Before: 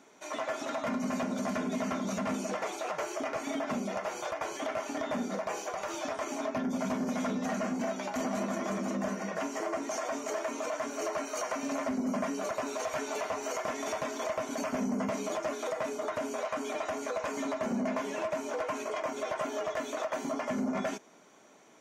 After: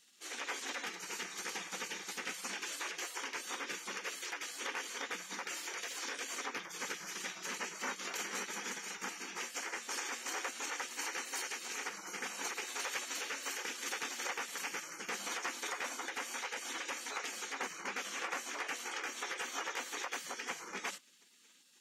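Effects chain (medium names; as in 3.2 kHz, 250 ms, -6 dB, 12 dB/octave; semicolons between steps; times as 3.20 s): high-pass 630 Hz 12 dB/octave; spectral gate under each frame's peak -15 dB weak; trim +5.5 dB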